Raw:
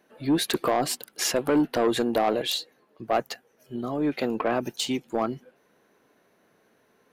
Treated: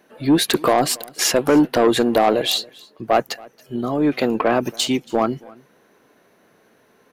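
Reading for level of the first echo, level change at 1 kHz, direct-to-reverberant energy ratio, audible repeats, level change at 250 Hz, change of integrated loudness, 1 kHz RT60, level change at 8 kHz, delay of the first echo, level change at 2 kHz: −24.0 dB, +7.5 dB, no reverb audible, 1, +7.5 dB, +7.5 dB, no reverb audible, +7.5 dB, 278 ms, +7.5 dB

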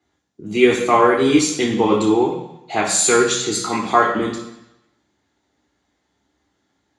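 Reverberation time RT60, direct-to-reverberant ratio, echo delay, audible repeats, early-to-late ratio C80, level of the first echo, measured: 0.85 s, −3.5 dB, no echo audible, no echo audible, 8.0 dB, no echo audible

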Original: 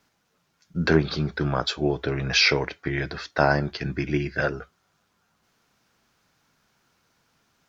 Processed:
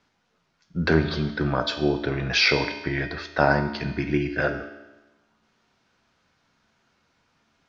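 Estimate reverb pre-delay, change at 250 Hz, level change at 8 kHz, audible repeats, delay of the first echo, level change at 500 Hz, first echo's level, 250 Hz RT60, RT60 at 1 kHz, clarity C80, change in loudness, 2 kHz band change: 3 ms, +1.0 dB, can't be measured, no echo audible, no echo audible, +0.5 dB, no echo audible, 1.1 s, 1.1 s, 11.0 dB, 0.0 dB, +0.5 dB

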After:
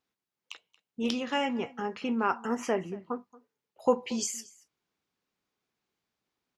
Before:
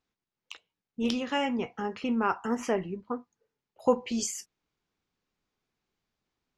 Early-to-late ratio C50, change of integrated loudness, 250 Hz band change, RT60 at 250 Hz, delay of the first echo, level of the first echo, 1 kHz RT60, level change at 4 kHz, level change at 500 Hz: no reverb audible, −1.0 dB, −2.0 dB, no reverb audible, 229 ms, −21.5 dB, no reverb audible, 0.0 dB, −0.5 dB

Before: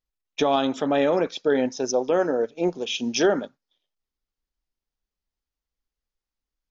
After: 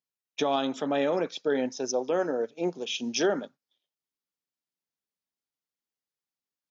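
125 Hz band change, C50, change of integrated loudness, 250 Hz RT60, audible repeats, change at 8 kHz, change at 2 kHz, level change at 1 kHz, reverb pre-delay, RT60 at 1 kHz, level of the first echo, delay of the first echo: −6.0 dB, no reverb audible, −5.0 dB, no reverb audible, no echo audible, can't be measured, −4.5 dB, −5.5 dB, no reverb audible, no reverb audible, no echo audible, no echo audible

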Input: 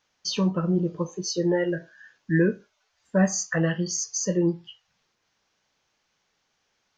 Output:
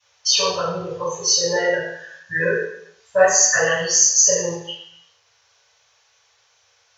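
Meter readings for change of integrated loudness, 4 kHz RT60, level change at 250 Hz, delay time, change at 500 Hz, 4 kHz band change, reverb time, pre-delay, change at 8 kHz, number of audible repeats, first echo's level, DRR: +8.0 dB, 0.70 s, −10.5 dB, no echo audible, +7.5 dB, +14.0 dB, 0.70 s, 3 ms, +15.5 dB, no echo audible, no echo audible, −14.5 dB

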